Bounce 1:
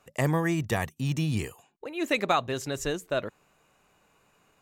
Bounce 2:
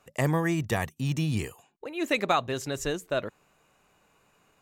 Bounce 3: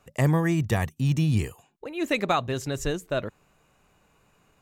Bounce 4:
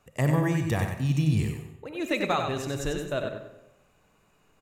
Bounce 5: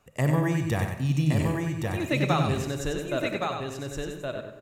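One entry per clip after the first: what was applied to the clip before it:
no processing that can be heard
low-shelf EQ 170 Hz +9.5 dB
repeating echo 94 ms, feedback 26%, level −6 dB; on a send at −9 dB: convolution reverb RT60 1.0 s, pre-delay 10 ms; on the sum: level −3 dB
single-tap delay 1,119 ms −3.5 dB

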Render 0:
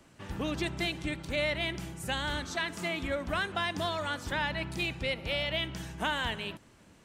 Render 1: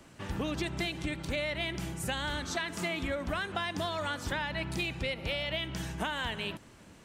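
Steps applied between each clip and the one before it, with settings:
downward compressor, threshold −34 dBFS, peak gain reduction 8.5 dB
level +4 dB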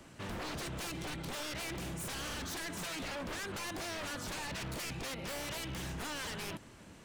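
wave folding −35.5 dBFS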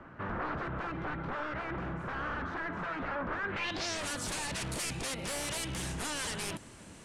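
low-pass filter sweep 1,400 Hz → 9,600 Hz, 0:03.42–0:04.03
level +3 dB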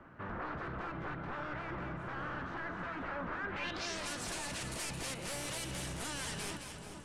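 echo with a time of its own for lows and highs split 1,300 Hz, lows 430 ms, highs 217 ms, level −6.5 dB
level −5 dB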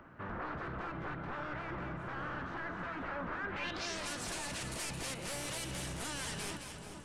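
upward compression, threshold −59 dBFS

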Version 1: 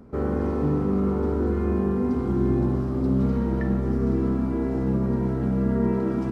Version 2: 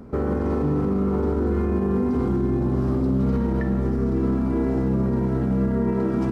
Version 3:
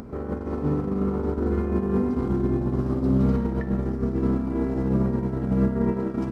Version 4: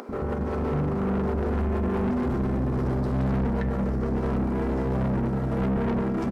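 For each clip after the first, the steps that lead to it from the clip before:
brickwall limiter −21 dBFS, peak gain reduction 10 dB; level +6 dB
noise gate −20 dBFS, range −21 dB; upward compression, threshold −29 dBFS; level +4.5 dB
multiband delay without the direct sound highs, lows 90 ms, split 330 Hz; soft clipping −29.5 dBFS, distortion −8 dB; level +7 dB

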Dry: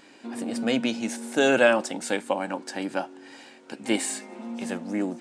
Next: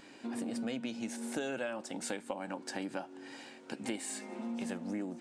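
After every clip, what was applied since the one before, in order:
low-shelf EQ 130 Hz +8.5 dB
downward compressor 6 to 1, threshold −32 dBFS, peak gain reduction 18 dB
level −3 dB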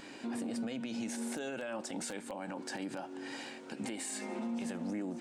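in parallel at −8 dB: wrap-around overflow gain 24 dB
on the sum: brickwall limiter −33 dBFS, peak gain reduction 12 dB
level +2.5 dB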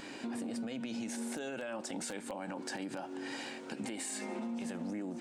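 downward compressor 3 to 1, threshold −40 dBFS, peak gain reduction 5 dB
level +3 dB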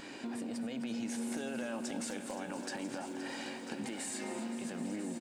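single-tap delay 994 ms −13 dB
feedback echo at a low word length 260 ms, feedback 80%, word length 11 bits, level −11 dB
level −1 dB

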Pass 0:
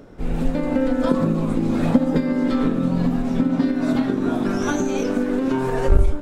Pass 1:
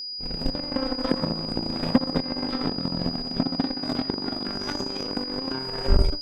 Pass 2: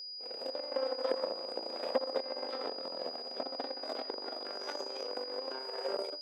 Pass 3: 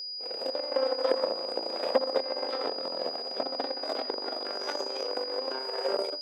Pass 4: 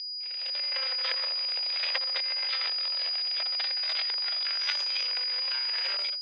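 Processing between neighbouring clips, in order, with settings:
harmonic generator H 7 −18 dB, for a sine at −3 dBFS; steady tone 4,900 Hz −28 dBFS; level −3.5 dB
four-pole ladder high-pass 450 Hz, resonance 55%
mains-hum notches 50/100/150/200/250 Hz; level +6.5 dB
automatic gain control gain up to 6.5 dB; flat-topped band-pass 3,000 Hz, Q 1.4; level +8.5 dB

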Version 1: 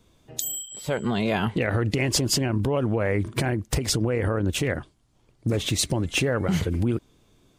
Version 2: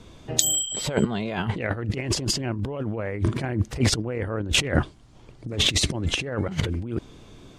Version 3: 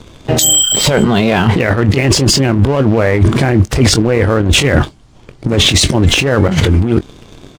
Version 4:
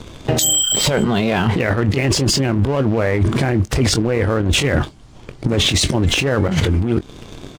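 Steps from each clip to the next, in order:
high-frequency loss of the air 54 metres; compressor whose output falls as the input rises −30 dBFS, ratio −0.5; level +6.5 dB
leveller curve on the samples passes 2; double-tracking delay 22 ms −13 dB; boost into a limiter +12.5 dB; level −1 dB
downward compressor 3 to 1, threshold −17 dBFS, peak gain reduction 9 dB; level +1.5 dB

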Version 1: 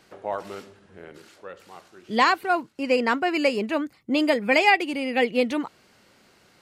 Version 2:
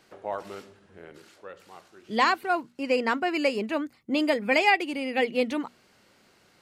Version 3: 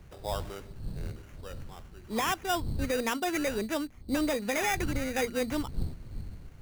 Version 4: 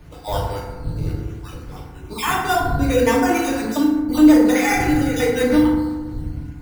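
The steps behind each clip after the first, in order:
mains-hum notches 60/120/180/240 Hz; level −3 dB
wind on the microphone 86 Hz −36 dBFS; brickwall limiter −17.5 dBFS, peak gain reduction 8 dB; sample-rate reduction 4,300 Hz, jitter 0%; level −2.5 dB
time-frequency cells dropped at random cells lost 27%; feedback delay network reverb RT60 1.3 s, low-frequency decay 1.25×, high-frequency decay 0.4×, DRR −5.5 dB; level +5 dB

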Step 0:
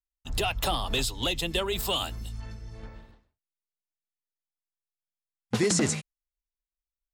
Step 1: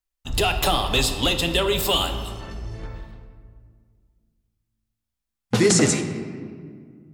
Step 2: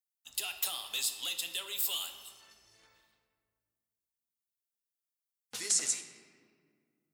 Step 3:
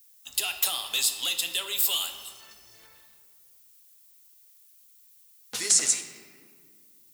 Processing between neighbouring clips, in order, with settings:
convolution reverb RT60 1.9 s, pre-delay 6 ms, DRR 6 dB; level +6.5 dB
first difference; level −6.5 dB
background noise violet −65 dBFS; level +8 dB

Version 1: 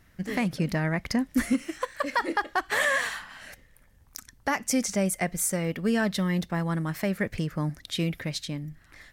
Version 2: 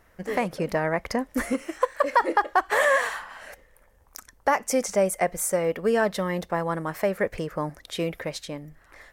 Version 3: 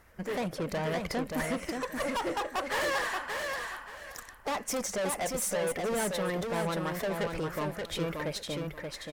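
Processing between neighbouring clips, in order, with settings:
octave-band graphic EQ 125/250/500/1,000/4,000 Hz −8/−4/+9/+6/−4 dB
spectral magnitudes quantised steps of 15 dB; tube saturation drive 30 dB, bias 0.3; on a send: repeating echo 579 ms, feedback 22%, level −4.5 dB; on the sum: level +1 dB

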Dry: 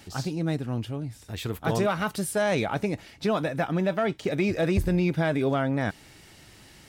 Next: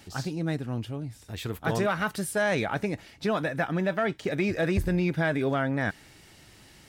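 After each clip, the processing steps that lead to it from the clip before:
dynamic equaliser 1,700 Hz, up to +6 dB, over −46 dBFS, Q 2.5
level −2 dB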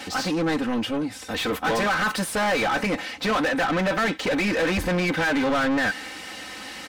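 comb filter 3.9 ms, depth 89%
mid-hump overdrive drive 30 dB, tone 2,800 Hz, clips at −11.5 dBFS
level −4 dB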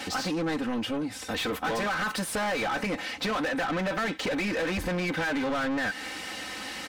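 downward compressor 3 to 1, threshold −29 dBFS, peak gain reduction 7 dB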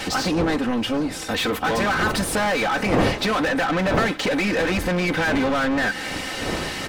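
wind on the microphone 530 Hz −37 dBFS
feedback echo with a long and a short gap by turns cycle 1,026 ms, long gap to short 3 to 1, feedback 50%, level −21.5 dB
level +7 dB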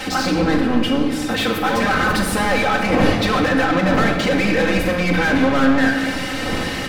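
rectangular room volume 2,900 cubic metres, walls mixed, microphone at 2.1 metres

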